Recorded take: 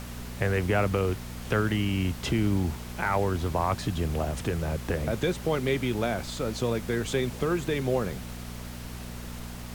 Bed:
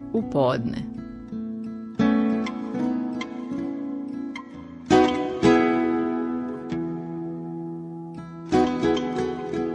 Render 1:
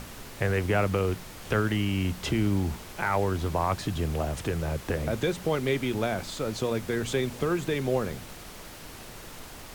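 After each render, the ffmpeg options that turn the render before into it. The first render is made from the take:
ffmpeg -i in.wav -af "bandreject=frequency=60:width_type=h:width=4,bandreject=frequency=120:width_type=h:width=4,bandreject=frequency=180:width_type=h:width=4,bandreject=frequency=240:width_type=h:width=4" out.wav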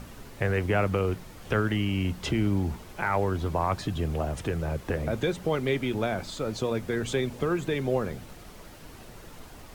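ffmpeg -i in.wav -af "afftdn=noise_reduction=7:noise_floor=-44" out.wav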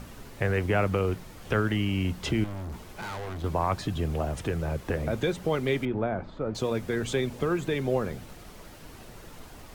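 ffmpeg -i in.wav -filter_complex "[0:a]asettb=1/sr,asplit=3[link_01][link_02][link_03];[link_01]atrim=end=2.444[link_04];[link_02]atrim=start=2.44:end=3.44,asetpts=PTS-STARTPTS,afade=type=in:duration=0.004:curve=qsin,afade=type=out:start_time=0.996:duration=0.004:curve=qsin,volume=34dB,asoftclip=hard,volume=-34dB[link_05];[link_03]atrim=start=3.436[link_06];[link_04][link_05]acrossfade=duration=0.004:curve1=hsin:curve2=qsin[link_07];[link_07][link_06]acrossfade=duration=0.004:curve1=qsin:curve2=hsin,asettb=1/sr,asplit=3[link_08][link_09][link_10];[link_08]atrim=end=5.854[link_11];[link_09]atrim=start=5.85:end=6.55,asetpts=PTS-STARTPTS,afade=type=in:duration=0.004:curve=qsin,afade=type=out:start_time=0.696:duration=0.004:curve=qsin,lowpass=1400[link_12];[link_10]atrim=start=6.546[link_13];[link_11][link_12]acrossfade=duration=0.004:curve1=hsin:curve2=qsin[link_14];[link_14][link_13]acrossfade=duration=0.004:curve1=qsin:curve2=hsin" out.wav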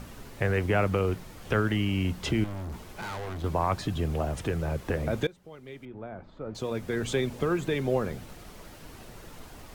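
ffmpeg -i in.wav -filter_complex "[0:a]asplit=2[link_01][link_02];[link_01]atrim=end=5.27,asetpts=PTS-STARTPTS,afade=type=out:start_time=5.266:duration=0.004:curve=hsin:silence=0.0841395[link_03];[link_02]atrim=start=5.27,asetpts=PTS-STARTPTS,afade=type=in:duration=1.8:curve=qua:silence=0.0841395[link_04];[link_03][link_04]concat=n=2:v=0:a=1" out.wav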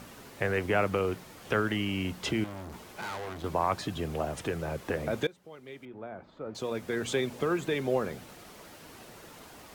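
ffmpeg -i in.wav -af "highpass=frequency=240:poles=1" out.wav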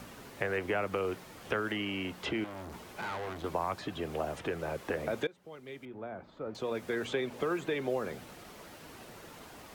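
ffmpeg -i in.wav -filter_complex "[0:a]acrossover=split=270|3600[link_01][link_02][link_03];[link_01]acompressor=threshold=-45dB:ratio=4[link_04];[link_02]acompressor=threshold=-29dB:ratio=4[link_05];[link_03]acompressor=threshold=-56dB:ratio=4[link_06];[link_04][link_05][link_06]amix=inputs=3:normalize=0" out.wav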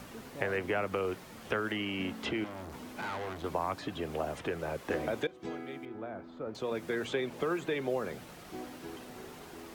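ffmpeg -i in.wav -i bed.wav -filter_complex "[1:a]volume=-24dB[link_01];[0:a][link_01]amix=inputs=2:normalize=0" out.wav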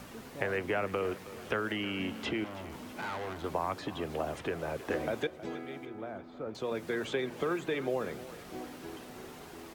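ffmpeg -i in.wav -af "aecho=1:1:318|636|954|1272:0.158|0.0761|0.0365|0.0175" out.wav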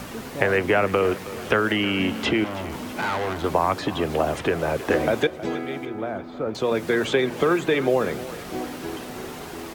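ffmpeg -i in.wav -af "volume=12dB" out.wav

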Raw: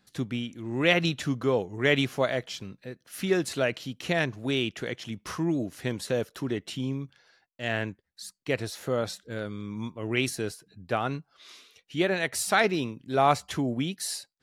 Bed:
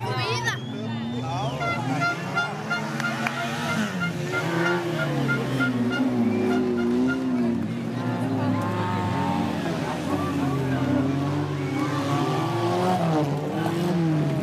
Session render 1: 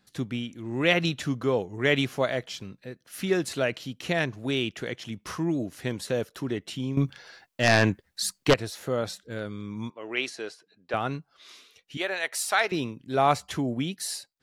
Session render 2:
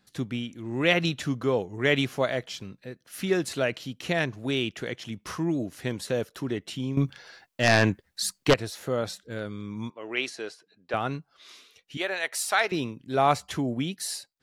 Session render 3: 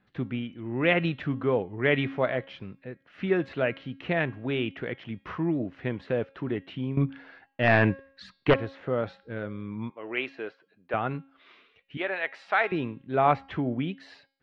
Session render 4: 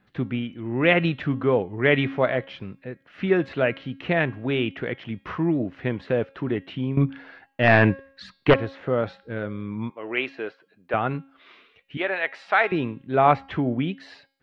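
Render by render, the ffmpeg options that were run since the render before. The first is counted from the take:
ffmpeg -i in.wav -filter_complex "[0:a]asettb=1/sr,asplit=3[link_01][link_02][link_03];[link_01]atrim=end=6.974[link_04];[link_02]atrim=start=6.97:end=8.54,asetpts=PTS-STARTPTS,afade=type=in:duration=0.004:curve=qsin,afade=type=out:start_time=1.566:duration=0.004:curve=qsin,aeval=exprs='0.237*sin(PI/2*2.82*val(0)/0.237)':channel_layout=same[link_05];[link_03]atrim=start=8.536[link_06];[link_04][link_05]acrossfade=duration=0.004:curve1=hsin:curve2=qsin[link_07];[link_07][link_06]acrossfade=duration=0.004:curve1=qsin:curve2=hsin,asettb=1/sr,asplit=3[link_08][link_09][link_10];[link_08]atrim=end=9.904[link_11];[link_09]atrim=start=9.9:end=10.94,asetpts=PTS-STARTPTS,afade=type=in:duration=0.004:curve=qsin,afade=type=out:start_time=1.036:duration=0.004:curve=qsin,highpass=440,lowpass=5300[link_12];[link_10]atrim=start=10.936[link_13];[link_11][link_12]acrossfade=duration=0.004:curve1=hsin:curve2=qsin[link_14];[link_14][link_13]acrossfade=duration=0.004:curve1=qsin:curve2=hsin,asettb=1/sr,asplit=3[link_15][link_16][link_17];[link_15]atrim=end=11.974[link_18];[link_16]atrim=start=11.97:end=12.72,asetpts=PTS-STARTPTS,afade=type=in:duration=0.004:curve=qsin,afade=type=out:start_time=0.746:duration=0.004:curve=qsin,highpass=610[link_19];[link_17]atrim=start=12.716[link_20];[link_18][link_19]acrossfade=duration=0.004:curve1=hsin:curve2=qsin[link_21];[link_21][link_20]acrossfade=duration=0.004:curve1=qsin:curve2=hsin" out.wav
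ffmpeg -i in.wav -af anull out.wav
ffmpeg -i in.wav -af "lowpass=frequency=2700:width=0.5412,lowpass=frequency=2700:width=1.3066,bandreject=frequency=272:width_type=h:width=4,bandreject=frequency=544:width_type=h:width=4,bandreject=frequency=816:width_type=h:width=4,bandreject=frequency=1088:width_type=h:width=4,bandreject=frequency=1360:width_type=h:width=4,bandreject=frequency=1632:width_type=h:width=4,bandreject=frequency=1904:width_type=h:width=4,bandreject=frequency=2176:width_type=h:width=4,bandreject=frequency=2448:width_type=h:width=4,bandreject=frequency=2720:width_type=h:width=4,bandreject=frequency=2992:width_type=h:width=4,bandreject=frequency=3264:width_type=h:width=4,bandreject=frequency=3536:width_type=h:width=4,bandreject=frequency=3808:width_type=h:width=4,bandreject=frequency=4080:width_type=h:width=4,bandreject=frequency=4352:width_type=h:width=4,bandreject=frequency=4624:width_type=h:width=4,bandreject=frequency=4896:width_type=h:width=4,bandreject=frequency=5168:width_type=h:width=4,bandreject=frequency=5440:width_type=h:width=4" out.wav
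ffmpeg -i in.wav -af "volume=4.5dB" out.wav

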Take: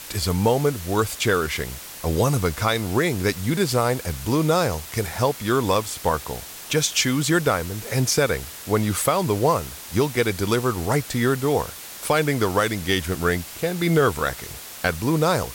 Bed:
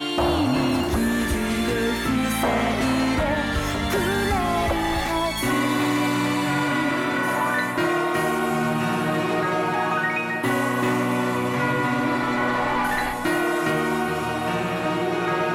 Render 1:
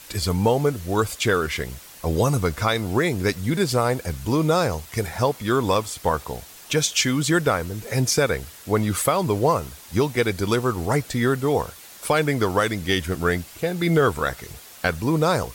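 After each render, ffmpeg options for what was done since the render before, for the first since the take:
ffmpeg -i in.wav -af "afftdn=noise_reduction=7:noise_floor=-38" out.wav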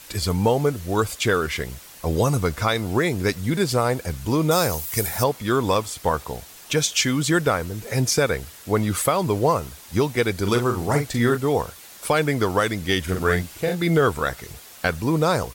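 ffmpeg -i in.wav -filter_complex "[0:a]asettb=1/sr,asplit=3[link_01][link_02][link_03];[link_01]atrim=end=4.514[link_04];[link_02]atrim=start=4.51:end=5.24,asetpts=PTS-STARTPTS,afade=type=in:duration=0.004:curve=qsin,afade=type=out:start_time=0.726:duration=0.004:curve=qsin,aemphasis=mode=production:type=50fm[link_05];[link_03]atrim=start=5.236[link_06];[link_04][link_05]acrossfade=duration=0.004:curve1=hsin:curve2=qsin[link_07];[link_07][link_06]acrossfade=duration=0.004:curve1=qsin:curve2=hsin,asplit=3[link_08][link_09][link_10];[link_08]afade=type=out:start_time=10.44:duration=0.02[link_11];[link_09]asplit=2[link_12][link_13];[link_13]adelay=42,volume=-7dB[link_14];[link_12][link_14]amix=inputs=2:normalize=0,afade=type=in:start_time=10.44:duration=0.02,afade=type=out:start_time=11.36:duration=0.02[link_15];[link_10]afade=type=in:start_time=11.36:duration=0.02[link_16];[link_11][link_15][link_16]amix=inputs=3:normalize=0,asplit=3[link_17][link_18][link_19];[link_17]afade=type=out:start_time=13.06:duration=0.02[link_20];[link_18]asplit=2[link_21][link_22];[link_22]adelay=44,volume=-4dB[link_23];[link_21][link_23]amix=inputs=2:normalize=0,afade=type=in:start_time=13.06:duration=0.02,afade=type=out:start_time=13.74:duration=0.02[link_24];[link_19]afade=type=in:start_time=13.74:duration=0.02[link_25];[link_20][link_24][link_25]amix=inputs=3:normalize=0" out.wav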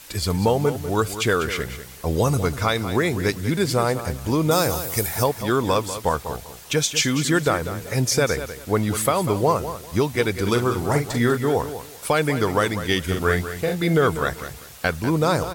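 ffmpeg -i in.wav -af "aecho=1:1:195|390|585:0.266|0.0612|0.0141" out.wav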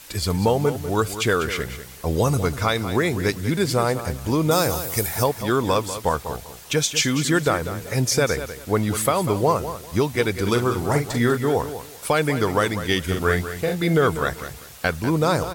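ffmpeg -i in.wav -af anull out.wav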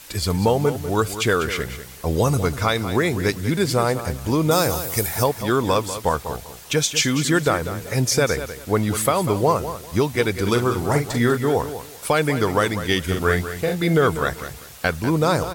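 ffmpeg -i in.wav -af "volume=1dB" out.wav

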